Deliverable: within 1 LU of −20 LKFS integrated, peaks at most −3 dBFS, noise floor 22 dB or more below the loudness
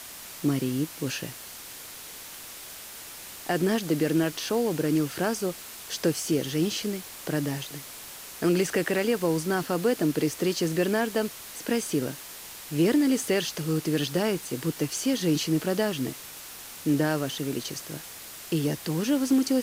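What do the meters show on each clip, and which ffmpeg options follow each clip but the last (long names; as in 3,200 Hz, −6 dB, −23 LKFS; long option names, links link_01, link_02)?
background noise floor −43 dBFS; target noise floor −50 dBFS; integrated loudness −27.5 LKFS; sample peak −12.5 dBFS; target loudness −20.0 LKFS
→ -af "afftdn=noise_reduction=7:noise_floor=-43"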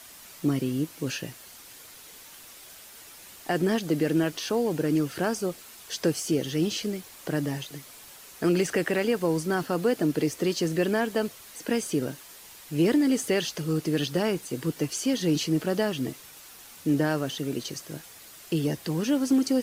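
background noise floor −48 dBFS; target noise floor −50 dBFS
→ -af "afftdn=noise_reduction=6:noise_floor=-48"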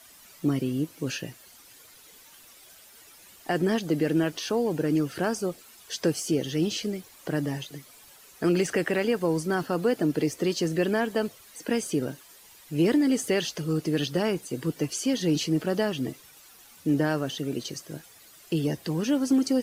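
background noise floor −53 dBFS; integrated loudness −27.5 LKFS; sample peak −13.0 dBFS; target loudness −20.0 LKFS
→ -af "volume=7.5dB"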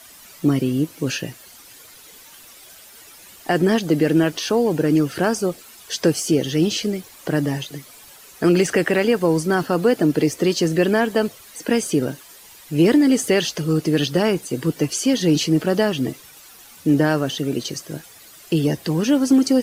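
integrated loudness −20.0 LKFS; sample peak −5.5 dBFS; background noise floor −45 dBFS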